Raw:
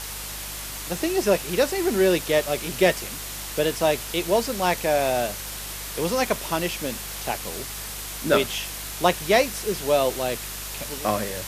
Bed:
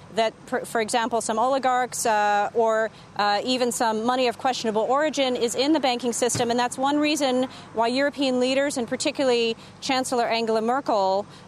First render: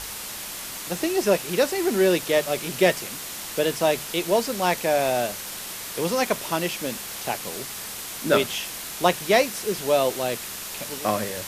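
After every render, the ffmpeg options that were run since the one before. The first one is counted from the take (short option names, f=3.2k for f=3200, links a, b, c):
-af "bandreject=f=50:t=h:w=4,bandreject=f=100:t=h:w=4,bandreject=f=150:t=h:w=4"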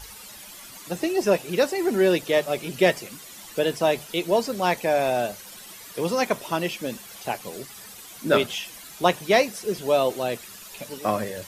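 -af "afftdn=nr=12:nf=-35"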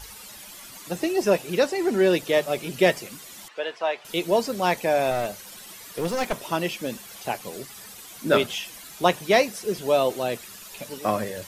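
-filter_complex "[0:a]asettb=1/sr,asplit=3[a][b][c];[a]atrim=end=1.584[d];[b]atrim=start=1.58:end=2.13,asetpts=PTS-STARTPTS,afade=t=in:d=0.004:c=qsin,afade=t=out:st=0.546:d=0.004:c=qsin,acrossover=split=8900[e][f];[f]acompressor=threshold=-50dB:ratio=4:attack=1:release=60[g];[e][g]amix=inputs=2:normalize=0[h];[c]atrim=start=2.126[i];[d][h]acrossfade=d=0.004:c1=hsin:c2=qsin[j];[j][i]acrossfade=d=0.004:c1=qsin:c2=hsin,asettb=1/sr,asplit=3[k][l][m];[k]atrim=end=3.484[n];[l]atrim=start=3.48:end=4.05,asetpts=PTS-STARTPTS,afade=t=in:d=0.004:c=qsin,afade=t=out:st=0.566:d=0.004:c=qsin,highpass=730,lowpass=2.8k[o];[m]atrim=start=4.046[p];[n][o]acrossfade=d=0.004:c1=hsin:c2=qsin[q];[q][p]acrossfade=d=0.004:c1=qsin:c2=hsin,asettb=1/sr,asplit=3[r][s][t];[r]atrim=end=5.114[u];[s]atrim=start=5.11:end=6.51,asetpts=PTS-STARTPTS,afade=t=in:d=0.004:c=qsin,afade=t=out:st=1.396:d=0.004:c=qsin,aeval=exprs='clip(val(0),-1,0.0501)':c=same[v];[t]atrim=start=6.506[w];[u][v]acrossfade=d=0.004:c1=hsin:c2=qsin[x];[x][w]acrossfade=d=0.004:c1=qsin:c2=hsin"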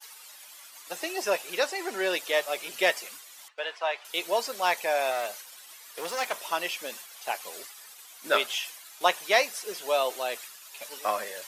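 -af "agate=range=-33dB:threshold=-37dB:ratio=3:detection=peak,highpass=750"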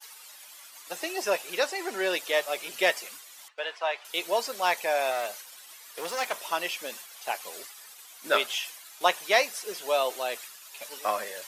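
-af anull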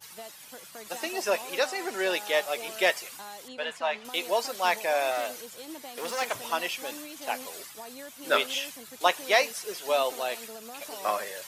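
-filter_complex "[1:a]volume=-22dB[a];[0:a][a]amix=inputs=2:normalize=0"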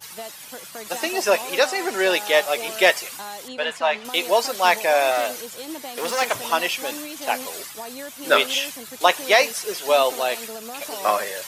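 -af "volume=8dB,alimiter=limit=-2dB:level=0:latency=1"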